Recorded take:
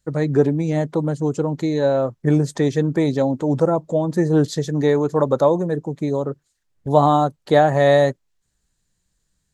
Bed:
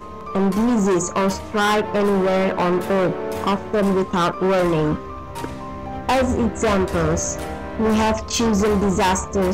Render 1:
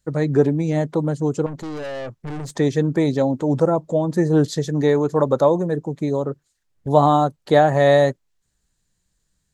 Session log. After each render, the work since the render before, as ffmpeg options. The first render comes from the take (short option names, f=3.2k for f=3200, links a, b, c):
-filter_complex "[0:a]asettb=1/sr,asplit=3[a][b][c];[a]atrim=end=1.464[d];[b]atrim=start=1.46:end=2.57,asetpts=PTS-STARTPTS,afade=t=in:d=0.004:c=qsin,afade=t=out:st=1.106:d=0.004:c=qsin,aeval=exprs='(tanh(25.1*val(0)+0.25)-tanh(0.25))/25.1':c=same[e];[c]atrim=start=2.566[f];[d][e]acrossfade=d=0.004:c1=hsin:c2=qsin[g];[g][f]acrossfade=d=0.004:c1=qsin:c2=hsin"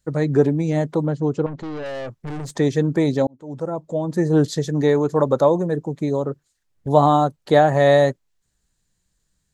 -filter_complex "[0:a]asettb=1/sr,asplit=3[a][b][c];[a]atrim=end=1.064[d];[b]atrim=start=1.06:end=1.86,asetpts=PTS-STARTPTS,afade=t=in:d=0.004:c=qsin,afade=t=out:st=0.796:d=0.004:c=qsin,lowpass=3.9k[e];[c]atrim=start=1.856[f];[d][e]acrossfade=d=0.004:c1=hsin:c2=qsin[g];[g][f]acrossfade=d=0.004:c1=qsin:c2=hsin,asplit=2[h][i];[h]atrim=end=3.27,asetpts=PTS-STARTPTS,afade=t=out:st=3.266:d=0.004:c=hsin[j];[i]atrim=start=3.27,asetpts=PTS-STARTPTS,afade=t=in:d=1.09[k];[j][k]concat=n=2:v=0:a=1"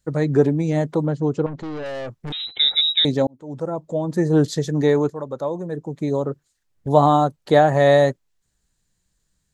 -filter_complex "[0:a]asettb=1/sr,asplit=3[a][b][c];[a]atrim=end=2.324[d];[b]atrim=start=2.32:end=3.05,asetpts=PTS-STARTPTS,afade=t=in:d=0.004:c=qsin,afade=t=out:st=0.726:d=0.004:c=qsin,lowpass=f=3.4k:t=q:w=0.5098,lowpass=f=3.4k:t=q:w=0.6013,lowpass=f=3.4k:t=q:w=0.9,lowpass=f=3.4k:t=q:w=2.563,afreqshift=-4000[e];[c]atrim=start=3.046[f];[d][e]acrossfade=d=0.004:c1=hsin:c2=qsin[g];[g][f]acrossfade=d=0.004:c1=qsin:c2=hsin,asplit=2[h][i];[h]atrim=end=5.1,asetpts=PTS-STARTPTS,afade=t=out:st=5.096:d=0.004:c=hsin:silence=0.237137[j];[i]atrim=start=5.1,asetpts=PTS-STARTPTS,afade=t=in:d=1.03:c=qua:silence=0.237137[k];[j][k]concat=n=2:v=0:a=1"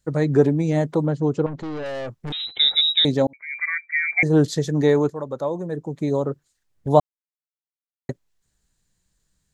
-filter_complex "[0:a]asettb=1/sr,asplit=3[a][b][c];[a]atrim=end=3.334[d];[b]atrim=start=3.33:end=4.23,asetpts=PTS-STARTPTS,afade=t=in:d=0.004:c=qsin,afade=t=out:st=0.896:d=0.004:c=qsin,lowpass=f=2.1k:t=q:w=0.5098,lowpass=f=2.1k:t=q:w=0.6013,lowpass=f=2.1k:t=q:w=0.9,lowpass=f=2.1k:t=q:w=2.563,afreqshift=-2500[e];[c]atrim=start=4.226[f];[d][e]acrossfade=d=0.004:c1=hsin:c2=qsin[g];[g][f]acrossfade=d=0.004:c1=qsin:c2=hsin,asplit=3[h][i][j];[h]atrim=end=7,asetpts=PTS-STARTPTS,afade=t=out:st=6.996:d=0.004:c=hsin[k];[i]atrim=start=7:end=8.09,asetpts=PTS-STARTPTS,volume=0[l];[j]atrim=start=8.09,asetpts=PTS-STARTPTS,afade=t=in:d=0.004:c=hsin[m];[k][l][m]concat=n=3:v=0:a=1"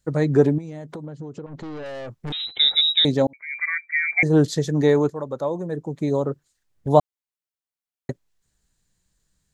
-filter_complex "[0:a]asettb=1/sr,asplit=3[a][b][c];[a]atrim=end=0.584[d];[b]atrim=start=0.58:end=2.19,asetpts=PTS-STARTPTS,afade=t=in:d=0.004:c=qsin,afade=t=out:st=1.606:d=0.004:c=qsin,acompressor=threshold=-31dB:ratio=8:attack=3.2:release=140:knee=1:detection=peak[e];[c]atrim=start=2.186[f];[d][e]acrossfade=d=0.004:c1=hsin:c2=qsin[g];[g][f]acrossfade=d=0.004:c1=qsin:c2=hsin"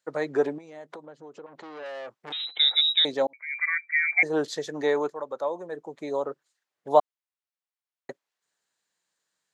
-af "highpass=590,highshelf=f=5.7k:g=-11.5"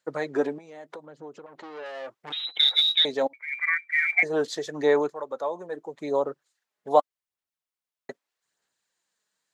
-af "aphaser=in_gain=1:out_gain=1:delay=4.8:decay=0.37:speed=0.81:type=sinusoidal"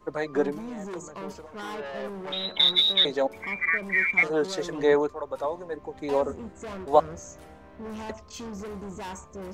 -filter_complex "[1:a]volume=-19.5dB[a];[0:a][a]amix=inputs=2:normalize=0"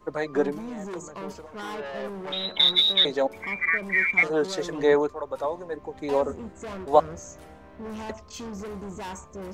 -af "volume=1dB"